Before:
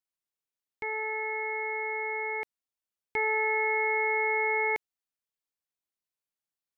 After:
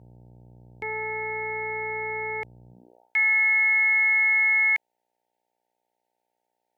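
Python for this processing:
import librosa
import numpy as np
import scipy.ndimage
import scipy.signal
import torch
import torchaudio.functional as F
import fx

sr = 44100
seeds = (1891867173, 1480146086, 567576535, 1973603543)

y = fx.dmg_buzz(x, sr, base_hz=60.0, harmonics=15, level_db=-53.0, tilt_db=-6, odd_only=False)
y = fx.filter_sweep_highpass(y, sr, from_hz=99.0, to_hz=1900.0, start_s=2.67, end_s=3.17, q=2.5)
y = F.gain(torch.from_numpy(y), 2.0).numpy()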